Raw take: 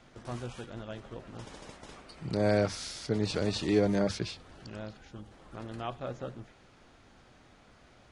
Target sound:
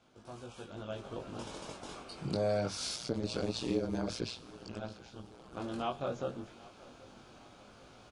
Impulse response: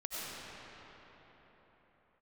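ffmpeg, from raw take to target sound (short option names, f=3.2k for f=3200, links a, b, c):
-filter_complex "[0:a]flanger=delay=19:depth=2.1:speed=0.25,asettb=1/sr,asplit=3[a][b][c];[a]atrim=end=2.964[d];[b]atrim=start=2.96:end=5.57,asetpts=PTS-STARTPTS,afade=t=in:d=0.004:c=qsin,afade=t=out:st=2.606:d=0.004:c=qsin,tremolo=f=120:d=0.889[e];[c]atrim=start=5.566[f];[d][e]acrossfade=d=0.004:c1=hsin:c2=qsin[g];[g][f]acrossfade=d=0.004:c1=qsin:c2=hsin,acompressor=threshold=-37dB:ratio=3,lowshelf=f=87:g=-9.5,aecho=1:1:782|1564|2346:0.0891|0.0383|0.0165,dynaudnorm=f=180:g=9:m=11dB,equalizer=f=1.9k:w=5:g=-12,volume=-4dB"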